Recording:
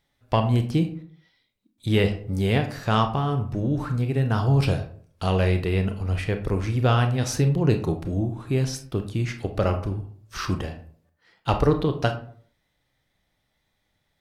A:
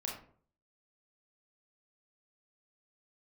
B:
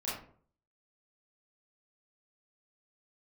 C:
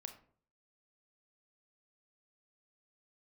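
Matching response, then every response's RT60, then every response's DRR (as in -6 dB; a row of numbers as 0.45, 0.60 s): C; 0.50, 0.50, 0.50 s; -2.0, -9.5, 6.0 dB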